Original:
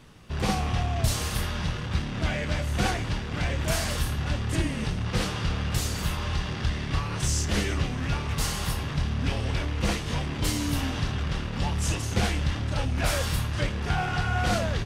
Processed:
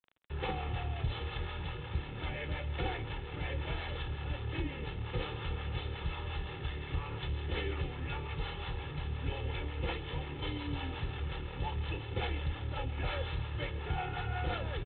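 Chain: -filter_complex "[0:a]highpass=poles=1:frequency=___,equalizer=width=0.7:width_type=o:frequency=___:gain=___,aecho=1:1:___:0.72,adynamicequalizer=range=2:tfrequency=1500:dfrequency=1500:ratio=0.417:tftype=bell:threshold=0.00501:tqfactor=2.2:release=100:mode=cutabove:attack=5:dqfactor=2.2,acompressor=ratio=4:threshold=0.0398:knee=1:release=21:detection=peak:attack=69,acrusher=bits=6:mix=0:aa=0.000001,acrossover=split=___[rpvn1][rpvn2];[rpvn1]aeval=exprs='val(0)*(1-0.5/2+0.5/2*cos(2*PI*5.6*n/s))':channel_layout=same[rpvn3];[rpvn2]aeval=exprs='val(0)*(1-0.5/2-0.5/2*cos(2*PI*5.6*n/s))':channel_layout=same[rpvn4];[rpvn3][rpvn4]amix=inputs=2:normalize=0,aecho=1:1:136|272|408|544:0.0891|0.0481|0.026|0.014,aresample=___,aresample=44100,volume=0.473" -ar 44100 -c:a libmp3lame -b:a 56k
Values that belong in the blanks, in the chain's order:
53, 96, -2.5, 2.3, 500, 8000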